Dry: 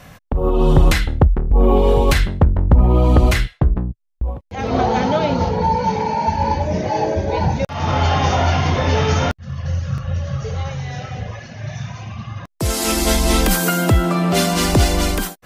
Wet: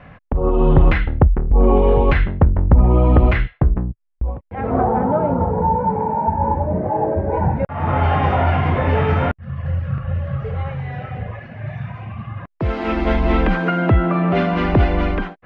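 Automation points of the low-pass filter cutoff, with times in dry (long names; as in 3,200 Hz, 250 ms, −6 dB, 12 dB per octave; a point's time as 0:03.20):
low-pass filter 24 dB per octave
0:04.35 2,500 Hz
0:04.94 1,300 Hz
0:06.98 1,300 Hz
0:08.12 2,400 Hz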